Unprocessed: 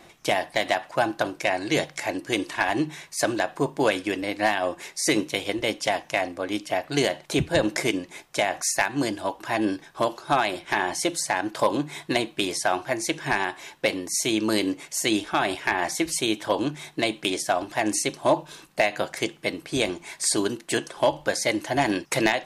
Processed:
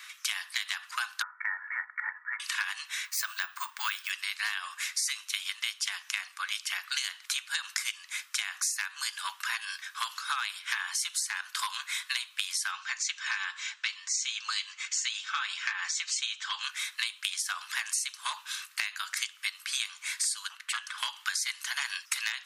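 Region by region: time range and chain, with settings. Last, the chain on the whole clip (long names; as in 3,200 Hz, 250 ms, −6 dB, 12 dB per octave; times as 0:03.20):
0:01.22–0:02.40: Butterworth low-pass 2,000 Hz 96 dB per octave + comb filter 2.2 ms, depth 78%
0:03.05–0:04.10: tilt shelving filter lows +4 dB, about 1,400 Hz + bad sample-rate conversion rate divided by 2×, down filtered, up hold
0:12.71–0:16.64: Chebyshev low-pass filter 7,300 Hz, order 4 + notch comb filter 240 Hz
0:20.49–0:20.98: bass and treble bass +13 dB, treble −10 dB + saturating transformer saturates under 930 Hz
whole clip: Butterworth high-pass 1,200 Hz 48 dB per octave; dynamic equaliser 2,000 Hz, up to −6 dB, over −41 dBFS, Q 1.4; downward compressor 6 to 1, threshold −37 dBFS; level +8 dB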